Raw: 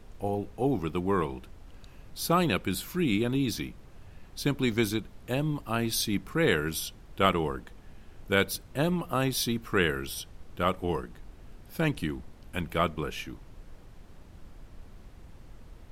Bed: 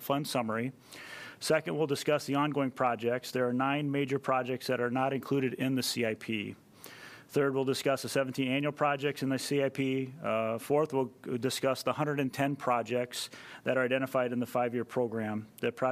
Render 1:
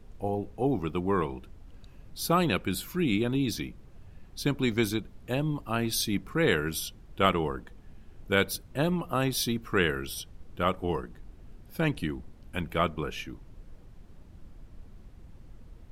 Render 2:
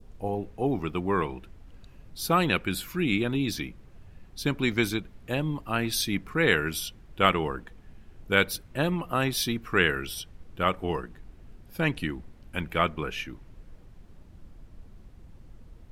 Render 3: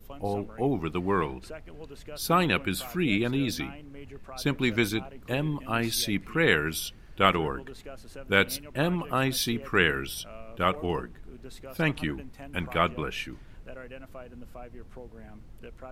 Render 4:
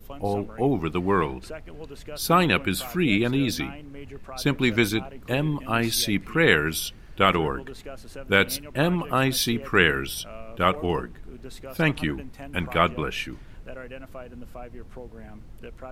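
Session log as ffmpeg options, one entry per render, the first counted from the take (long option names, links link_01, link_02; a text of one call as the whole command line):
ffmpeg -i in.wav -af "afftdn=noise_reduction=6:noise_floor=-51" out.wav
ffmpeg -i in.wav -af "adynamicequalizer=threshold=0.00708:dfrequency=2000:dqfactor=0.98:tfrequency=2000:tqfactor=0.98:attack=5:release=100:ratio=0.375:range=3:mode=boostabove:tftype=bell" out.wav
ffmpeg -i in.wav -i bed.wav -filter_complex "[1:a]volume=-15dB[link_01];[0:a][link_01]amix=inputs=2:normalize=0" out.wav
ffmpeg -i in.wav -af "volume=4dB,alimiter=limit=-3dB:level=0:latency=1" out.wav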